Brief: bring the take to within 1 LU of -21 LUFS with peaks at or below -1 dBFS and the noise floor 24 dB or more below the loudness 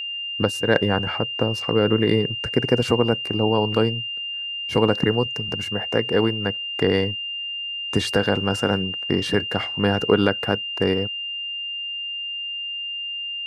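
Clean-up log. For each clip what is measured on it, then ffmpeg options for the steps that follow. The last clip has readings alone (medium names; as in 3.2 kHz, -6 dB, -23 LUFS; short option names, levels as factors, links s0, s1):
steady tone 2.8 kHz; tone level -27 dBFS; loudness -22.5 LUFS; peak level -2.0 dBFS; loudness target -21.0 LUFS
-> -af "bandreject=f=2800:w=30"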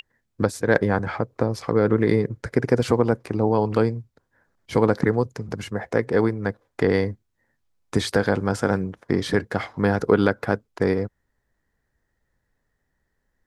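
steady tone not found; loudness -23.0 LUFS; peak level -2.0 dBFS; loudness target -21.0 LUFS
-> -af "volume=1.26,alimiter=limit=0.891:level=0:latency=1"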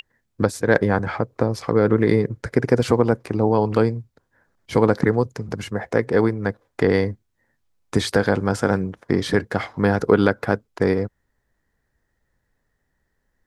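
loudness -21.0 LUFS; peak level -1.0 dBFS; noise floor -73 dBFS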